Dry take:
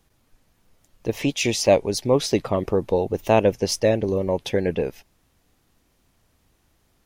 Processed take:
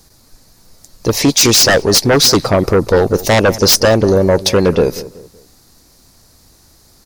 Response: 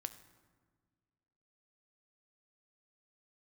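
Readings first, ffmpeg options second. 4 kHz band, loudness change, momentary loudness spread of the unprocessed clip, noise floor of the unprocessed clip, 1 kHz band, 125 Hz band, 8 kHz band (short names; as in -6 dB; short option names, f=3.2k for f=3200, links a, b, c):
+17.0 dB, +11.0 dB, 7 LU, -66 dBFS, +9.0 dB, +11.0 dB, +17.0 dB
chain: -filter_complex "[0:a]highshelf=f=3.7k:t=q:w=3:g=6,aeval=exprs='0.531*sin(PI/2*3.16*val(0)/0.531)':c=same,asplit=2[a][b];[b]adelay=188,lowpass=f=1.3k:p=1,volume=-15.5dB,asplit=2[c][d];[d]adelay=188,lowpass=f=1.3k:p=1,volume=0.38,asplit=2[e][f];[f]adelay=188,lowpass=f=1.3k:p=1,volume=0.38[g];[a][c][e][g]amix=inputs=4:normalize=0"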